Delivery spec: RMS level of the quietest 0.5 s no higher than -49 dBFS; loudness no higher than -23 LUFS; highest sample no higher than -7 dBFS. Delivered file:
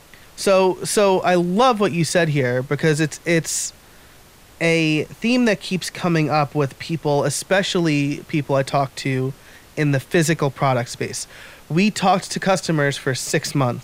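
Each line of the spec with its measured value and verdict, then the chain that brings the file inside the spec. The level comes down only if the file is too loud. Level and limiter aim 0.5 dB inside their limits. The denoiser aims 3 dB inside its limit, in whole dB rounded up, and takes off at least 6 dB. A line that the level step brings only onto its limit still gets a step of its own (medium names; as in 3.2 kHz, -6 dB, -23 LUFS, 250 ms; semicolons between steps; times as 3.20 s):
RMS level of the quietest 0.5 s -47 dBFS: fail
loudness -19.5 LUFS: fail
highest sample -4.5 dBFS: fail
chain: trim -4 dB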